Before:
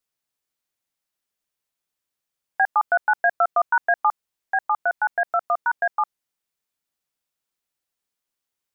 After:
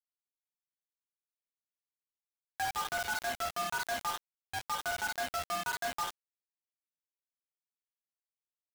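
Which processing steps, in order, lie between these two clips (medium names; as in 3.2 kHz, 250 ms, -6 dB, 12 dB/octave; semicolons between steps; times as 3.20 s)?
2.66–4.63 s: transient shaper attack -4 dB, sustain -8 dB; chord resonator D2 minor, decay 0.63 s; companded quantiser 2-bit; trim -5 dB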